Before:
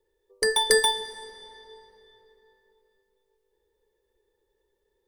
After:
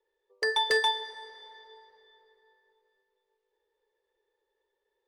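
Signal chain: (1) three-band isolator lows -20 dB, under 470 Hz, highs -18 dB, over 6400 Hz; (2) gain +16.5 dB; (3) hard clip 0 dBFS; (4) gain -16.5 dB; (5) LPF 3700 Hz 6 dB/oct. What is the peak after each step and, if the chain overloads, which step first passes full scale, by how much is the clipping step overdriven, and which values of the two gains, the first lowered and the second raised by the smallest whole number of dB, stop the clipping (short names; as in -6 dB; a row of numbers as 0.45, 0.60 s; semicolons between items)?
-8.0, +8.5, 0.0, -16.5, -16.5 dBFS; step 2, 8.5 dB; step 2 +7.5 dB, step 4 -7.5 dB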